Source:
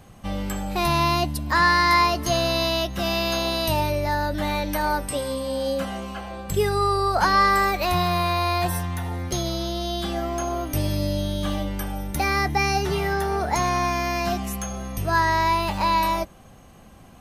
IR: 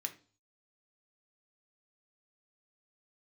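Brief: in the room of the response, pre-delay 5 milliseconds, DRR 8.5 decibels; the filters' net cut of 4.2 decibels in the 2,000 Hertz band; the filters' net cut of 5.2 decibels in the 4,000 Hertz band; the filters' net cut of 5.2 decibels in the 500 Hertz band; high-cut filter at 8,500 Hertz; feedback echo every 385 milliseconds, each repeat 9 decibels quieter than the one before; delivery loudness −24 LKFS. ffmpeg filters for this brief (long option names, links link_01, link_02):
-filter_complex "[0:a]lowpass=8500,equalizer=frequency=500:width_type=o:gain=-7.5,equalizer=frequency=2000:width_type=o:gain=-3.5,equalizer=frequency=4000:width_type=o:gain=-5,aecho=1:1:385|770|1155|1540:0.355|0.124|0.0435|0.0152,asplit=2[link_01][link_02];[1:a]atrim=start_sample=2205,adelay=5[link_03];[link_02][link_03]afir=irnorm=-1:irlink=0,volume=-7.5dB[link_04];[link_01][link_04]amix=inputs=2:normalize=0,volume=1.5dB"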